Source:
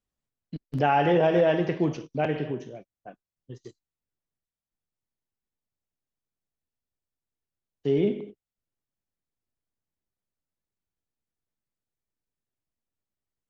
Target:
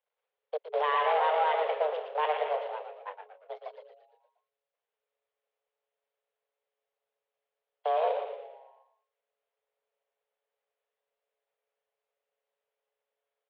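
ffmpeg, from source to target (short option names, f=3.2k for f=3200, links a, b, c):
-filter_complex "[0:a]aeval=exprs='if(lt(val(0),0),0.251*val(0),val(0))':c=same,alimiter=limit=-22.5dB:level=0:latency=1:release=468,acrusher=bits=5:mode=log:mix=0:aa=0.000001,asplit=7[a][b][c][d][e][f][g];[b]adelay=116,afreqshift=-130,volume=-6.5dB[h];[c]adelay=232,afreqshift=-260,volume=-12.7dB[i];[d]adelay=348,afreqshift=-390,volume=-18.9dB[j];[e]adelay=464,afreqshift=-520,volume=-25.1dB[k];[f]adelay=580,afreqshift=-650,volume=-31.3dB[l];[g]adelay=696,afreqshift=-780,volume=-37.5dB[m];[a][h][i][j][k][l][m]amix=inputs=7:normalize=0,highpass=f=150:t=q:w=0.5412,highpass=f=150:t=q:w=1.307,lowpass=f=3.2k:t=q:w=0.5176,lowpass=f=3.2k:t=q:w=0.7071,lowpass=f=3.2k:t=q:w=1.932,afreqshift=300,volume=6.5dB"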